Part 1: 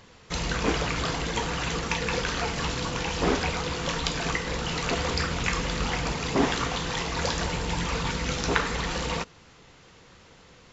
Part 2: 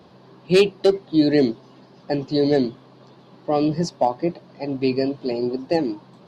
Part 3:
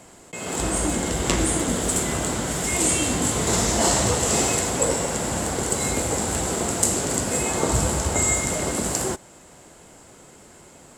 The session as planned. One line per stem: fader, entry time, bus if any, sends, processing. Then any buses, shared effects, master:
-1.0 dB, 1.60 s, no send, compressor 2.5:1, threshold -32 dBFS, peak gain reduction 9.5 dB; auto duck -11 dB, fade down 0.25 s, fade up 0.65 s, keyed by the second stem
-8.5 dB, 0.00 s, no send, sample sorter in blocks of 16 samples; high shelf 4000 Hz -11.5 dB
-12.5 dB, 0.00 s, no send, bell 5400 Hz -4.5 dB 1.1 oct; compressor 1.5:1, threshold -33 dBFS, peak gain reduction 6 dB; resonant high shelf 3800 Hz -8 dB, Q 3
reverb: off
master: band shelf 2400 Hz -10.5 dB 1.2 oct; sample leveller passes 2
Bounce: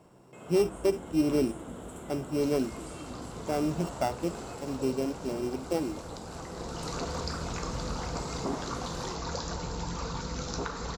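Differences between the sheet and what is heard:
stem 1: entry 1.60 s -> 2.10 s; master: missing sample leveller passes 2

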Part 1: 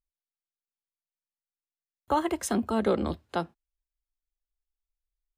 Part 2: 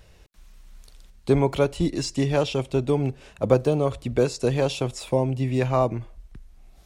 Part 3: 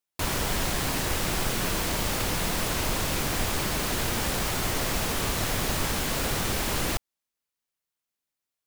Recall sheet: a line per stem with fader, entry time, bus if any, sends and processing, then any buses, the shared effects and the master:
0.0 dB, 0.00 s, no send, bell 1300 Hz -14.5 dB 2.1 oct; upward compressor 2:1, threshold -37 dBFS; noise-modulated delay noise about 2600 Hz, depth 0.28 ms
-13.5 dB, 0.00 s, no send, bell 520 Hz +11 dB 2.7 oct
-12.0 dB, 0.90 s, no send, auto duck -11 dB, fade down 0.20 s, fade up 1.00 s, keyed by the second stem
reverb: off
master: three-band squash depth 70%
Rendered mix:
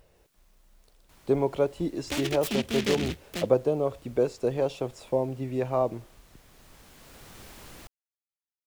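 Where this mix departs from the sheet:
stem 3 -12.0 dB -> -19.5 dB; master: missing three-band squash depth 70%

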